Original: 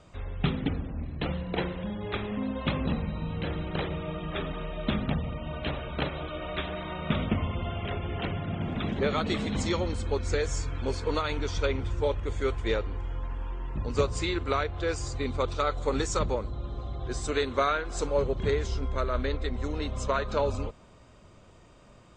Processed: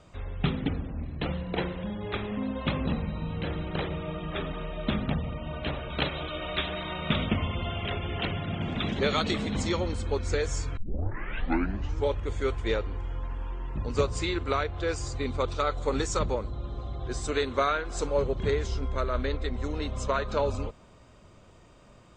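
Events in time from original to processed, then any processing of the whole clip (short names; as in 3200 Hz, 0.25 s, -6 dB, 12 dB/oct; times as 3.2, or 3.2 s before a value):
5.9–9.31 bell 5600 Hz +9.5 dB 2.2 oct
10.77 tape start 1.31 s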